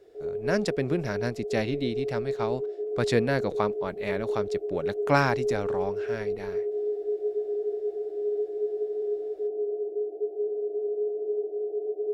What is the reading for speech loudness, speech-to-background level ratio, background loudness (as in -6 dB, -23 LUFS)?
-30.0 LUFS, 1.0 dB, -31.0 LUFS